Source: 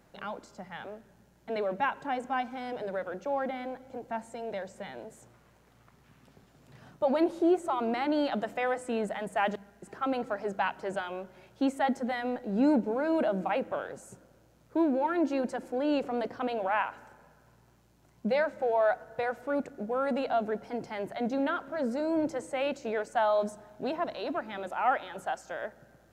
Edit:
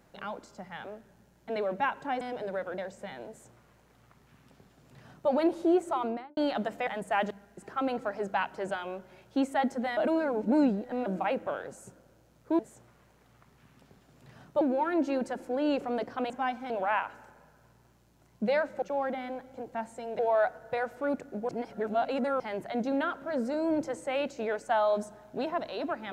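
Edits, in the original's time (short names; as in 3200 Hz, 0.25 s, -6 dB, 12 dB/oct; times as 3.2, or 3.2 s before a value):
2.21–2.61 move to 16.53
3.18–4.55 move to 18.65
5.05–7.07 copy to 14.84
7.74–8.14 studio fade out
8.64–9.12 cut
12.22–13.31 reverse
19.95–20.86 reverse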